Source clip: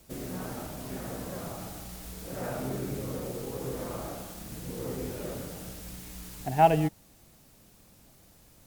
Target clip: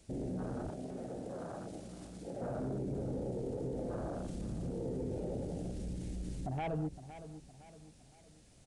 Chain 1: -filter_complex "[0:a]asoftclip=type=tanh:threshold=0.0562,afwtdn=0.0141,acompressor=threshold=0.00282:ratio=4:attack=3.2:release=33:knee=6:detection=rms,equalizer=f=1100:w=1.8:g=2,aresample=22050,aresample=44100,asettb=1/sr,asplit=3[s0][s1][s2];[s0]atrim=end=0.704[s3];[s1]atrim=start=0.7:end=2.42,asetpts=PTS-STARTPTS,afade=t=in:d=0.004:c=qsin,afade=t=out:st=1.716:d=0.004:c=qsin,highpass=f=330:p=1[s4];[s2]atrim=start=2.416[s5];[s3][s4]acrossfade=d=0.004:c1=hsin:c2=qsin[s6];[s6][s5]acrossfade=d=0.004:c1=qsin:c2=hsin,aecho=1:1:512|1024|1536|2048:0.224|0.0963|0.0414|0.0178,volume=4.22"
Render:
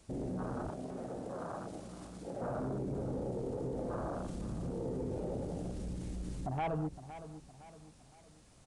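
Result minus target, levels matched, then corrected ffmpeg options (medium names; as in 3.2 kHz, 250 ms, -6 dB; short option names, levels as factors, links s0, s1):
1 kHz band +3.5 dB
-filter_complex "[0:a]asoftclip=type=tanh:threshold=0.0562,afwtdn=0.0141,acompressor=threshold=0.00282:ratio=4:attack=3.2:release=33:knee=6:detection=rms,equalizer=f=1100:w=1.8:g=-7,aresample=22050,aresample=44100,asettb=1/sr,asplit=3[s0][s1][s2];[s0]atrim=end=0.704[s3];[s1]atrim=start=0.7:end=2.42,asetpts=PTS-STARTPTS,afade=t=in:d=0.004:c=qsin,afade=t=out:st=1.716:d=0.004:c=qsin,highpass=f=330:p=1[s4];[s2]atrim=start=2.416[s5];[s3][s4]acrossfade=d=0.004:c1=hsin:c2=qsin[s6];[s6][s5]acrossfade=d=0.004:c1=qsin:c2=hsin,aecho=1:1:512|1024|1536|2048:0.224|0.0963|0.0414|0.0178,volume=4.22"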